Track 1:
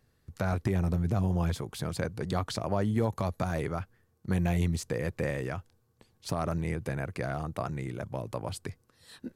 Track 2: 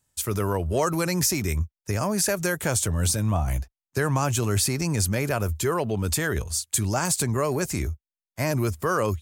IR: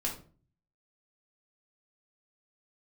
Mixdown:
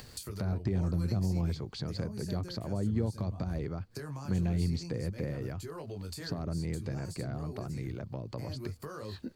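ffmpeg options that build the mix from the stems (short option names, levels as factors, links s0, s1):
-filter_complex "[0:a]lowpass=f=6700:w=0.5412,lowpass=f=6700:w=1.3066,acrusher=bits=11:mix=0:aa=0.000001,volume=0.794[s0];[1:a]flanger=delay=18.5:depth=5.2:speed=0.54,acompressor=threshold=0.0141:ratio=3,volume=0.531[s1];[s0][s1]amix=inputs=2:normalize=0,acrossover=split=440[s2][s3];[s3]acompressor=threshold=0.00398:ratio=4[s4];[s2][s4]amix=inputs=2:normalize=0,equalizer=f=4500:w=5.9:g=12,acompressor=mode=upward:threshold=0.0178:ratio=2.5"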